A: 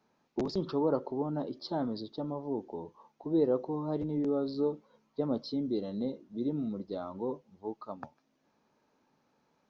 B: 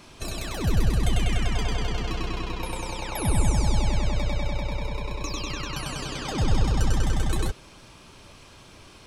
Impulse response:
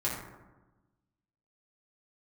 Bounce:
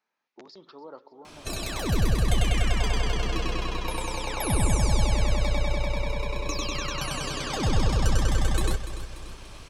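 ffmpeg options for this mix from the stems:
-filter_complex "[0:a]highpass=f=1k:p=1,equalizer=f=2k:t=o:w=1.3:g=7,volume=-8dB,asplit=2[a][b];[b]volume=-18dB[c];[1:a]lowshelf=f=190:g=-3.5,adelay=1250,volume=1.5dB,asplit=2[d][e];[e]volume=-12.5dB[f];[c][f]amix=inputs=2:normalize=0,aecho=0:1:291|582|873|1164|1455|1746|2037:1|0.51|0.26|0.133|0.0677|0.0345|0.0176[g];[a][d][g]amix=inputs=3:normalize=0"

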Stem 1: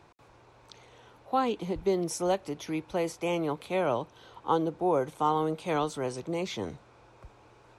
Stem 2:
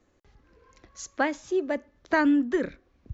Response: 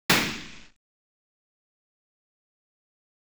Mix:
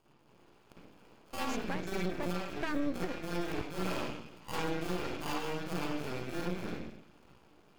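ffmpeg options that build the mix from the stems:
-filter_complex "[0:a]acrusher=samples=23:mix=1:aa=0.000001,highpass=f=130:p=1,equalizer=f=790:w=0.99:g=-3,volume=-9dB,asplit=3[a][b][c];[b]volume=-15.5dB[d];[1:a]adelay=500,volume=-2.5dB[e];[c]apad=whole_len=160404[f];[e][f]sidechaingate=range=-33dB:threshold=-58dB:ratio=16:detection=peak[g];[2:a]atrim=start_sample=2205[h];[d][h]afir=irnorm=-1:irlink=0[i];[a][g][i]amix=inputs=3:normalize=0,aeval=exprs='max(val(0),0)':c=same,alimiter=limit=-22dB:level=0:latency=1:release=352"

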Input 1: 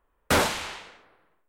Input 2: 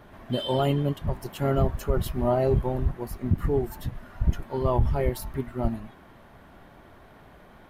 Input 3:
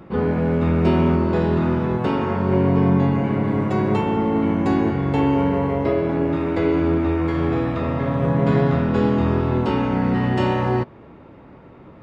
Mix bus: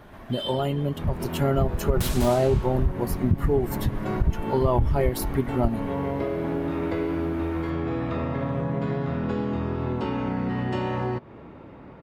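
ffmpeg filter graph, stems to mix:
-filter_complex "[0:a]highshelf=f=9.6k:g=7.5,acrossover=split=340|3000[a][b][c];[b]acompressor=threshold=-30dB:ratio=6[d];[a][d][c]amix=inputs=3:normalize=0,aeval=exprs='(mod(5.01*val(0)+1,2)-1)/5.01':c=same,adelay=1700,volume=-13.5dB,asplit=2[e][f];[f]volume=-4.5dB[g];[1:a]acompressor=threshold=-25dB:ratio=5,volume=2.5dB,asplit=2[h][i];[2:a]acompressor=threshold=-24dB:ratio=6,adelay=350,volume=-5dB[j];[i]apad=whole_len=545570[k];[j][k]sidechaincompress=threshold=-36dB:ratio=8:attack=16:release=142[l];[g]aecho=0:1:199:1[m];[e][h][l][m]amix=inputs=4:normalize=0,dynaudnorm=f=820:g=3:m=5dB"

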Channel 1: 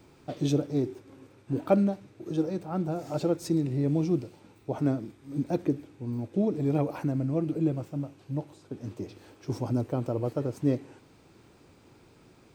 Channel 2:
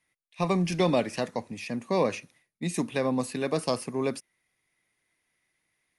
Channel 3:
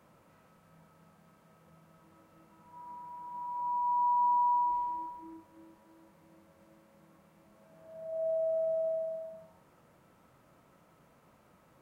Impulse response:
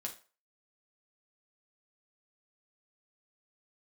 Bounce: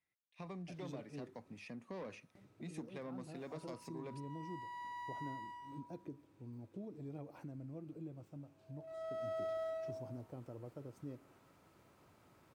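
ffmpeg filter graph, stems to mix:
-filter_complex "[0:a]adelay=400,volume=-14dB,asplit=3[a][b][c];[a]atrim=end=1.59,asetpts=PTS-STARTPTS,afade=t=out:st=1.586:d=0.004:c=hsin[d];[b]atrim=start=1.59:end=2.35,asetpts=PTS-STARTPTS,volume=0[e];[c]atrim=start=2.35,asetpts=PTS-STARTPTS,afade=t=in:d=0.004:c=hsin[f];[d][e][f]concat=n=3:v=0:a=1[g];[1:a]lowpass=f=3.5k:p=1,dynaudnorm=f=320:g=9:m=5dB,asoftclip=type=tanh:threshold=-18dB,volume=-13.5dB[h];[2:a]equalizer=f=190:t=o:w=2.6:g=-7.5,aeval=exprs='clip(val(0),-1,0.0106)':c=same,adelay=750,volume=-3.5dB,afade=t=in:st=8.72:d=0.74:silence=0.281838[i];[g][h]amix=inputs=2:normalize=0,acompressor=threshold=-52dB:ratio=2,volume=0dB[j];[i][j]amix=inputs=2:normalize=0,highpass=56,lowshelf=f=140:g=3.5"

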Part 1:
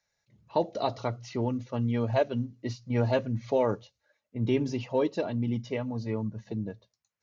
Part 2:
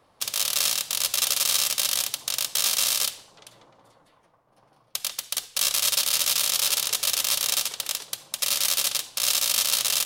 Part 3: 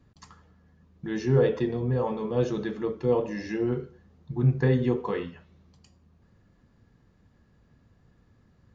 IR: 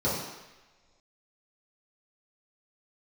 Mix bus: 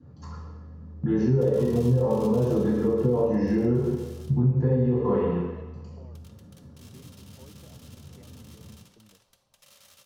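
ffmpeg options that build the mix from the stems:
-filter_complex "[0:a]acompressor=threshold=-27dB:ratio=6,adelay=2450,volume=-17dB[a];[1:a]asoftclip=type=tanh:threshold=-21.5dB,adelay=1200,volume=-10.5dB,afade=t=out:st=2.42:d=0.27:silence=0.266073,asplit=2[b][c];[c]volume=-18dB[d];[2:a]alimiter=limit=-19.5dB:level=0:latency=1,volume=2.5dB,asplit=2[e][f];[f]volume=-7dB[g];[a][e]amix=inputs=2:normalize=0,agate=range=-7dB:threshold=-44dB:ratio=16:detection=peak,acompressor=threshold=-30dB:ratio=6,volume=0dB[h];[3:a]atrim=start_sample=2205[i];[d][g]amix=inputs=2:normalize=0[j];[j][i]afir=irnorm=-1:irlink=0[k];[b][h][k]amix=inputs=3:normalize=0,highshelf=f=2.9k:g=-8,acompressor=threshold=-20dB:ratio=4"

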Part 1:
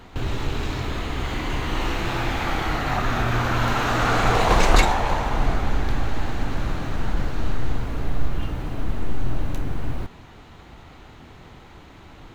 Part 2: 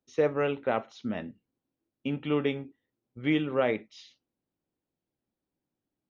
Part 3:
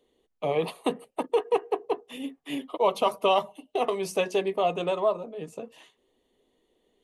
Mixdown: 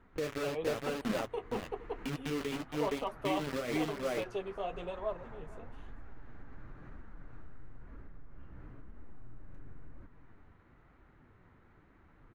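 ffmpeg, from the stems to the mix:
-filter_complex "[0:a]highshelf=f=2.4k:t=q:w=1.5:g=-10,acompressor=threshold=-27dB:ratio=6,volume=-13dB,asplit=2[a][b];[b]volume=-11dB[c];[1:a]bandreject=f=910:w=5.8,acrusher=bits=4:mix=0:aa=0.000001,volume=3dB,asplit=3[d][e][f];[e]volume=-8.5dB[g];[2:a]volume=-9dB,asplit=2[h][i];[i]volume=-20dB[j];[f]apad=whole_len=544274[k];[a][k]sidechaincompress=threshold=-31dB:ratio=4:attack=6.5:release=1250[l];[l][d]amix=inputs=2:normalize=0,equalizer=f=770:w=1.9:g=-7,alimiter=limit=-22.5dB:level=0:latency=1:release=226,volume=0dB[m];[c][g][j]amix=inputs=3:normalize=0,aecho=0:1:465:1[n];[h][m][n]amix=inputs=3:normalize=0,highshelf=f=5.8k:g=-9,flanger=delay=3:depth=9.3:regen=-41:speed=1:shape=triangular"

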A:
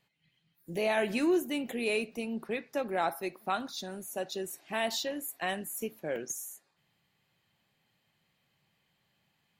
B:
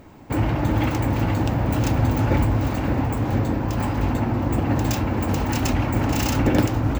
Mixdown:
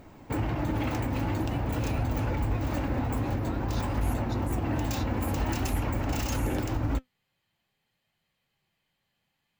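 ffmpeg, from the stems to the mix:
-filter_complex "[0:a]acompressor=threshold=-38dB:ratio=6,volume=1dB[a];[1:a]alimiter=limit=-16.5dB:level=0:latency=1:release=93,volume=0.5dB[b];[a][b]amix=inputs=2:normalize=0,asubboost=boost=2:cutoff=81,flanger=delay=1.3:depth=2.9:regen=81:speed=0.49:shape=triangular"

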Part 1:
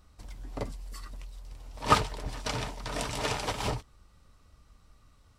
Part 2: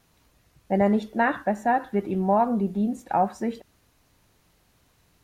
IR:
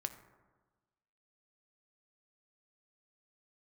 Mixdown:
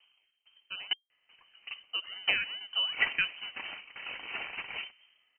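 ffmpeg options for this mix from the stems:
-filter_complex "[0:a]highpass=f=150:w=0.5412,highpass=f=150:w=1.3066,adelay=1100,volume=-7.5dB,asplit=2[a][b];[b]volume=-11dB[c];[1:a]acompressor=threshold=-22dB:ratio=6,acrusher=samples=26:mix=1:aa=0.000001:lfo=1:lforange=15.6:lforate=2.4,aeval=exprs='val(0)*pow(10,-23*if(lt(mod(2.2*n/s,1),2*abs(2.2)/1000),1-mod(2.2*n/s,1)/(2*abs(2.2)/1000),(mod(2.2*n/s,1)-2*abs(2.2)/1000)/(1-2*abs(2.2)/1000))/20)':c=same,volume=0dB,asplit=3[d][e][f];[d]atrim=end=0.93,asetpts=PTS-STARTPTS,afade=t=out:st=0.926:d=0.004:c=hsin[g];[e]atrim=start=0.93:end=1.93,asetpts=PTS-STARTPTS,volume=0[h];[f]atrim=start=1.93,asetpts=PTS-STARTPTS,afade=t=in:d=0.004:c=hsin[i];[g][h][i]concat=n=3:v=0:a=1[j];[2:a]atrim=start_sample=2205[k];[c][k]afir=irnorm=-1:irlink=0[l];[a][j][l]amix=inputs=3:normalize=0,lowpass=f=2.7k:t=q:w=0.5098,lowpass=f=2.7k:t=q:w=0.6013,lowpass=f=2.7k:t=q:w=0.9,lowpass=f=2.7k:t=q:w=2.563,afreqshift=-3200"

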